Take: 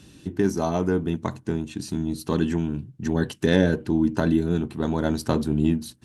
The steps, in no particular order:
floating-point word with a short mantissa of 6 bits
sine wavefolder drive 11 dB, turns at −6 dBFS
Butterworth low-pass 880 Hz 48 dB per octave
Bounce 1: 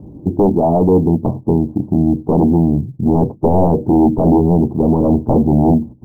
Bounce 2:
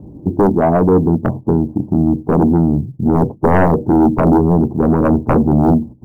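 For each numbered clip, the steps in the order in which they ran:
sine wavefolder, then Butterworth low-pass, then floating-point word with a short mantissa
Butterworth low-pass, then floating-point word with a short mantissa, then sine wavefolder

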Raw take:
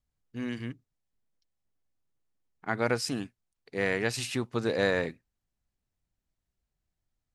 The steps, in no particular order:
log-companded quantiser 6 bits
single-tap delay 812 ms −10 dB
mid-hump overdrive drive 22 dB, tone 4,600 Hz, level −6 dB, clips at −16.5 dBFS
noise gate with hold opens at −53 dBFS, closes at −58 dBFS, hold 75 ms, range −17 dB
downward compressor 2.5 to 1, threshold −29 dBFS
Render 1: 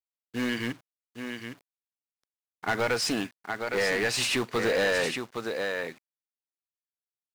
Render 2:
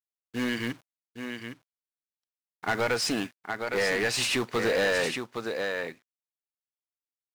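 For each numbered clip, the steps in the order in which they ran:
downward compressor, then single-tap delay, then log-companded quantiser, then mid-hump overdrive, then noise gate with hold
log-companded quantiser, then downward compressor, then single-tap delay, then mid-hump overdrive, then noise gate with hold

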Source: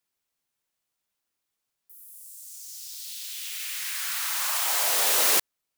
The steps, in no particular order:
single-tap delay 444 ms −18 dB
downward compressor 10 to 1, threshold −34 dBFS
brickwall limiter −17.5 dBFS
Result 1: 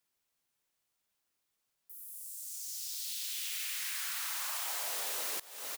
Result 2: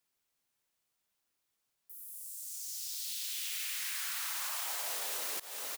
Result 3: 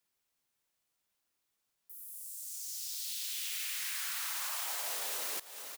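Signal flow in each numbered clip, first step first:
single-tap delay, then downward compressor, then brickwall limiter
single-tap delay, then brickwall limiter, then downward compressor
brickwall limiter, then single-tap delay, then downward compressor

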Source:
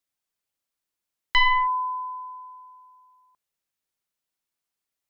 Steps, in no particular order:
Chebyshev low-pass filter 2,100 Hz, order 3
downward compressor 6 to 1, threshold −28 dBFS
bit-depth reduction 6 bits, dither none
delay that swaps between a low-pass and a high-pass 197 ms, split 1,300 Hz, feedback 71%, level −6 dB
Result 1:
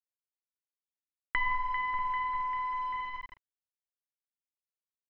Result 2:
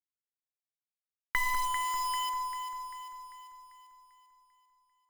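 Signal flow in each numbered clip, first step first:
delay that swaps between a low-pass and a high-pass, then downward compressor, then bit-depth reduction, then Chebyshev low-pass filter
Chebyshev low-pass filter, then downward compressor, then bit-depth reduction, then delay that swaps between a low-pass and a high-pass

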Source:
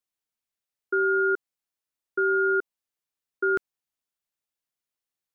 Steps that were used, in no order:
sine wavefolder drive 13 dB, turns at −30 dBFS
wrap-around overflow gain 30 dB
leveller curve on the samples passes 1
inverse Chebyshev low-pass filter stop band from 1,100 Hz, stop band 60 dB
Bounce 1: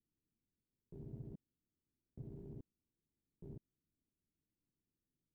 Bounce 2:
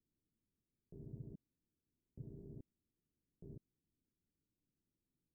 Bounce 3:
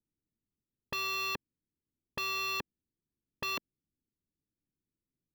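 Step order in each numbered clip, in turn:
sine wavefolder, then wrap-around overflow, then inverse Chebyshev low-pass filter, then leveller curve on the samples
sine wavefolder, then wrap-around overflow, then leveller curve on the samples, then inverse Chebyshev low-pass filter
inverse Chebyshev low-pass filter, then wrap-around overflow, then leveller curve on the samples, then sine wavefolder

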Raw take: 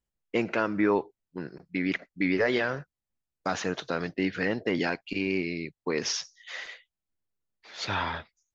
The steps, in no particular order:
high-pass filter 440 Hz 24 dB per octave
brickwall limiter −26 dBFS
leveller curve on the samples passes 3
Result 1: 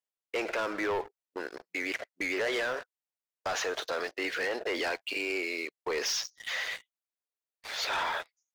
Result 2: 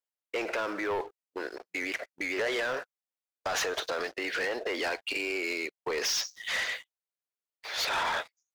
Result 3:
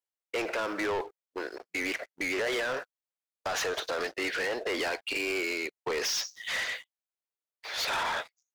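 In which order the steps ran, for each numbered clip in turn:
high-pass filter, then leveller curve on the samples, then brickwall limiter
brickwall limiter, then high-pass filter, then leveller curve on the samples
high-pass filter, then brickwall limiter, then leveller curve on the samples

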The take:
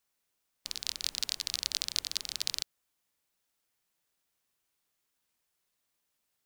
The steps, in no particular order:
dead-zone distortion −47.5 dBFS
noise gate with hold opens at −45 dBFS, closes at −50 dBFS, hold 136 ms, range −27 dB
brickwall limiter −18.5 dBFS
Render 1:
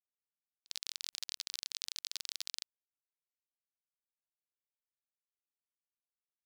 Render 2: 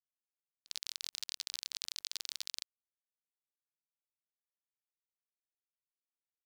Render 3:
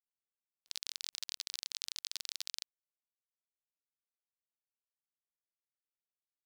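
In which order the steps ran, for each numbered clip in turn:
brickwall limiter, then dead-zone distortion, then noise gate with hold
dead-zone distortion, then noise gate with hold, then brickwall limiter
noise gate with hold, then brickwall limiter, then dead-zone distortion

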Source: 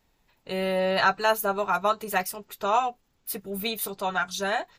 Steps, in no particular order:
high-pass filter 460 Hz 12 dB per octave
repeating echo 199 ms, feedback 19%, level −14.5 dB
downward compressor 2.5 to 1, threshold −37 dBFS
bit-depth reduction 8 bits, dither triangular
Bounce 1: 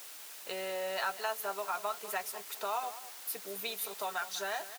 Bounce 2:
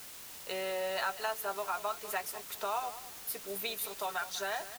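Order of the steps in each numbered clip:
downward compressor, then repeating echo, then bit-depth reduction, then high-pass filter
high-pass filter, then downward compressor, then bit-depth reduction, then repeating echo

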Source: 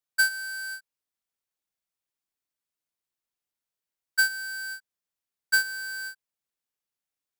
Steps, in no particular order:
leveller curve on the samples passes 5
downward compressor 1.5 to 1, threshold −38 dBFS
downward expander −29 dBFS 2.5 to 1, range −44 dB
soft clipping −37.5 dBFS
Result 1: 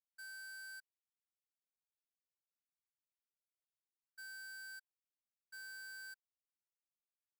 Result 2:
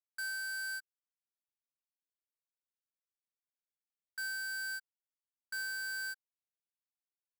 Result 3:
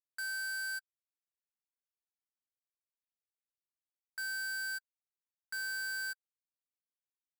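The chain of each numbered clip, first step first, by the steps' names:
leveller curve on the samples, then downward compressor, then soft clipping, then downward expander
downward compressor, then downward expander, then soft clipping, then leveller curve on the samples
downward expander, then downward compressor, then leveller curve on the samples, then soft clipping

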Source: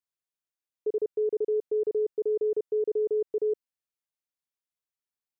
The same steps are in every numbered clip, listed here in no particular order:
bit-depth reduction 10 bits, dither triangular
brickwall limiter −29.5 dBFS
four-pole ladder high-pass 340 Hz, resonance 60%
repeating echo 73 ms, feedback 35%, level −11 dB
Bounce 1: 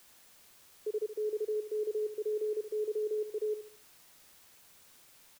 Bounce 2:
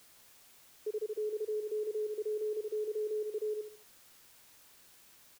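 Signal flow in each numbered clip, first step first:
four-pole ladder high-pass, then brickwall limiter, then bit-depth reduction, then repeating echo
repeating echo, then brickwall limiter, then four-pole ladder high-pass, then bit-depth reduction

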